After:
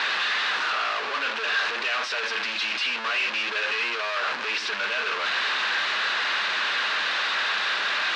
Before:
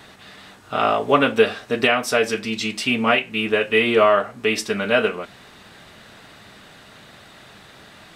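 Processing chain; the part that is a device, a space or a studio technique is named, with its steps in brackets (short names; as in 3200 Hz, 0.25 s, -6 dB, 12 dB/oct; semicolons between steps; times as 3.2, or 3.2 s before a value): home computer beeper (infinite clipping; speaker cabinet 700–4700 Hz, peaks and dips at 700 Hz -5 dB, 1100 Hz +4 dB, 1600 Hz +7 dB, 2600 Hz +5 dB, 4000 Hz +3 dB); gain -4.5 dB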